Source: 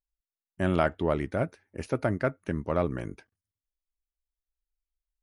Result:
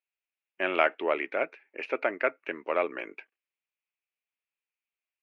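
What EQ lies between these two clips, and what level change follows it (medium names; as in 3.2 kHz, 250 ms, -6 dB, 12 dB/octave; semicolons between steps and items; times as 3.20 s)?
high-pass 360 Hz 24 dB/octave; resonant low-pass 2.5 kHz, resonance Q 5.6; 0.0 dB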